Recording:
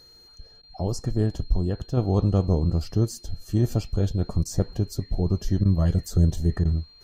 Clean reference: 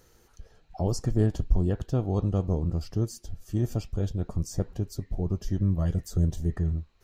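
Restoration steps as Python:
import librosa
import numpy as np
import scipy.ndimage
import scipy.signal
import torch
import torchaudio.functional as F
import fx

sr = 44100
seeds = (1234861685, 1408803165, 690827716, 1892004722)

y = fx.notch(x, sr, hz=4200.0, q=30.0)
y = fx.fix_interpolate(y, sr, at_s=(0.62, 4.44, 5.64, 6.64), length_ms=11.0)
y = fx.fix_level(y, sr, at_s=1.97, step_db=-5.0)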